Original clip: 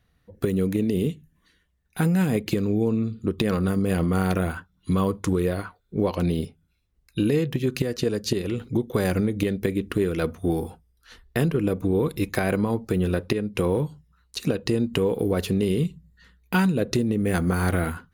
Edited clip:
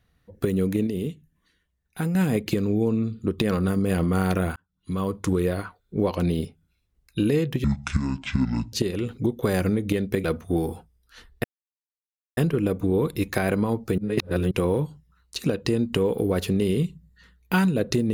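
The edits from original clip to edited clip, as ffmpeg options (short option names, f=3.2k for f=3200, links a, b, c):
-filter_complex "[0:a]asplit=10[a][b][c][d][e][f][g][h][i][j];[a]atrim=end=0.872[k];[b]atrim=start=0.868:end=2.152,asetpts=PTS-STARTPTS,volume=-4.5dB[l];[c]atrim=start=2.148:end=4.56,asetpts=PTS-STARTPTS,afade=t=out:st=2.408:d=0.004:c=hsin[m];[d]atrim=start=4.56:end=7.644,asetpts=PTS-STARTPTS,afade=t=in:d=0.73[n];[e]atrim=start=7.64:end=8.24,asetpts=PTS-STARTPTS,asetrate=24255,aresample=44100,atrim=end_sample=48109,asetpts=PTS-STARTPTS[o];[f]atrim=start=8.236:end=9.752[p];[g]atrim=start=10.178:end=11.38,asetpts=PTS-STARTPTS,afade=t=out:st=1.198:d=0.004:c=hsin,apad=pad_dur=0.93[q];[h]atrim=start=11.38:end=12.992,asetpts=PTS-STARTPTS,afade=t=in:d=0.004:c=hsin[r];[i]atrim=start=12.988:end=13.522,asetpts=PTS-STARTPTS,areverse[s];[j]atrim=start=13.518[t];[k][l]acrossfade=d=0.004:c1=hsin:c2=hsin[u];[m][n]concat=n=2:v=0:a=1[v];[u][v]acrossfade=d=0.004:c1=hsin:c2=hsin[w];[w][o]acrossfade=d=0.004:c1=hsin:c2=hsin[x];[x][p]acrossfade=d=0.004:c1=hsin:c2=hsin[y];[q][r]concat=n=2:v=0:a=1[z];[y][z]acrossfade=d=0.004:c1=hsin:c2=hsin[aa];[aa][s]acrossfade=d=0.004:c1=hsin:c2=hsin[ab];[ab][t]acrossfade=d=0.004:c1=hsin:c2=hsin"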